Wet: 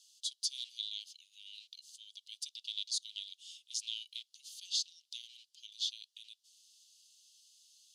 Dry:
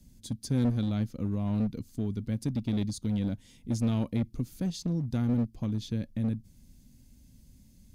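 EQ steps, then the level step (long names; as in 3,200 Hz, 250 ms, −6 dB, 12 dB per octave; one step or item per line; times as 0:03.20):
Chebyshev high-pass filter 2,900 Hz, order 6
low-pass filter 5,800 Hz 12 dB per octave
+11.5 dB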